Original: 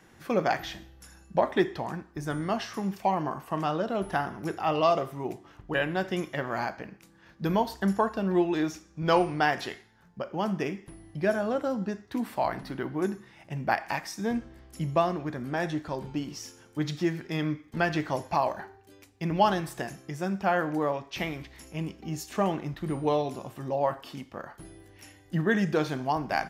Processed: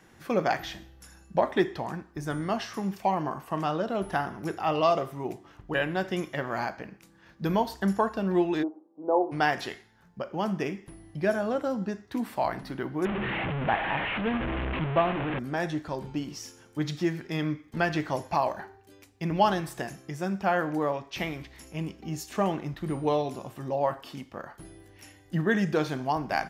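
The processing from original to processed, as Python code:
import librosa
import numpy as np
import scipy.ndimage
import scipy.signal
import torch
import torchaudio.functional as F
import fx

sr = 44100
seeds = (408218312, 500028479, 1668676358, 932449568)

y = fx.ellip_bandpass(x, sr, low_hz=270.0, high_hz=890.0, order=3, stop_db=60, at=(8.62, 9.31), fade=0.02)
y = fx.delta_mod(y, sr, bps=16000, step_db=-24.0, at=(13.05, 15.39))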